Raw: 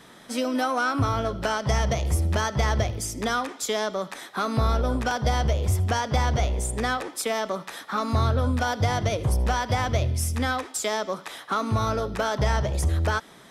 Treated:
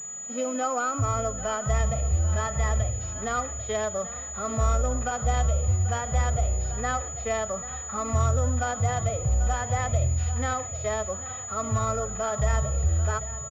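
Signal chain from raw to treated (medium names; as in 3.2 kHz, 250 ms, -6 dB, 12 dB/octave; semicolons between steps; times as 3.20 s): comb 1.6 ms, depth 45%; feedback delay 791 ms, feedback 50%, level -14 dB; harmonic-percussive split percussive -16 dB; class-D stage that switches slowly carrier 6.9 kHz; trim -2.5 dB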